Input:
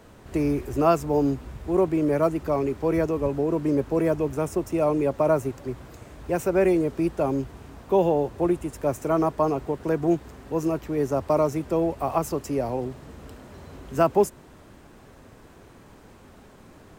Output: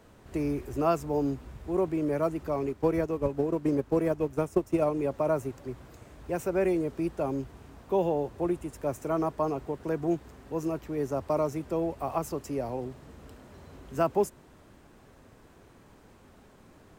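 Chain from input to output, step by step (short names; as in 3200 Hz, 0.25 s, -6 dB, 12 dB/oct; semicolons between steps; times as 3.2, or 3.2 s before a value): 2.61–5.06 transient shaper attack +8 dB, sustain -6 dB; gain -6 dB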